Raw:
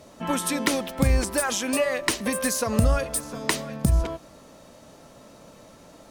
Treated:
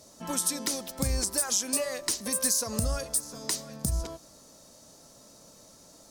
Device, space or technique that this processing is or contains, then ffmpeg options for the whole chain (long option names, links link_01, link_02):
over-bright horn tweeter: -af "highshelf=frequency=3800:width_type=q:width=1.5:gain=10.5,alimiter=limit=-5dB:level=0:latency=1:release=271,volume=-8dB"